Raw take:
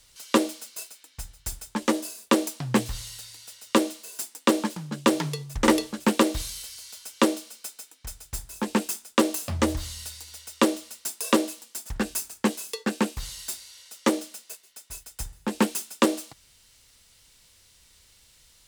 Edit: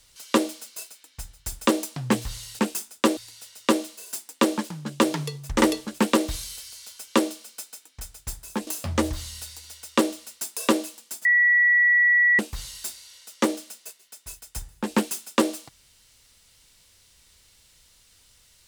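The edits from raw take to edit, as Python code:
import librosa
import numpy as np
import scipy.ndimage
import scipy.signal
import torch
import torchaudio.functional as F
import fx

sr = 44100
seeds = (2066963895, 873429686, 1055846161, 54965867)

y = fx.edit(x, sr, fx.cut(start_s=1.67, length_s=0.64),
    fx.move(start_s=8.73, length_s=0.58, to_s=3.23),
    fx.bleep(start_s=11.89, length_s=1.14, hz=1940.0, db=-15.0), tone=tone)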